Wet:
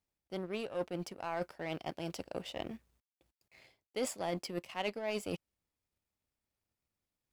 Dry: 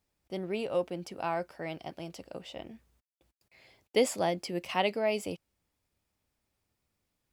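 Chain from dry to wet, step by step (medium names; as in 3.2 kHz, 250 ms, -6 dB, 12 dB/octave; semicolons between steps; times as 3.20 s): reverse; compression 5:1, threshold -42 dBFS, peak gain reduction 18.5 dB; reverse; power-law waveshaper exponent 1.4; trim +9.5 dB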